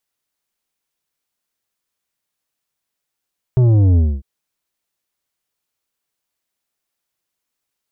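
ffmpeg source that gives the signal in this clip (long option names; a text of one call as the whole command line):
ffmpeg -f lavfi -i "aevalsrc='0.316*clip((0.65-t)/0.25,0,1)*tanh(2.82*sin(2*PI*130*0.65/log(65/130)*(exp(log(65/130)*t/0.65)-1)))/tanh(2.82)':duration=0.65:sample_rate=44100" out.wav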